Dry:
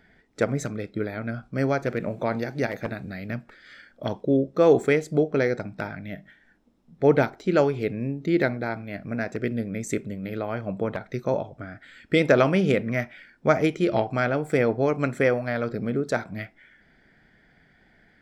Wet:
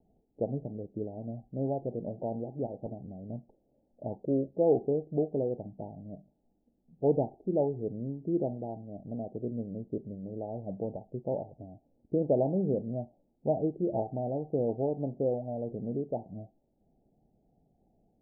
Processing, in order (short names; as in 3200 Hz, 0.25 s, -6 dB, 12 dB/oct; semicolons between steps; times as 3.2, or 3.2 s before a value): steep low-pass 840 Hz 96 dB/oct; gain -7.5 dB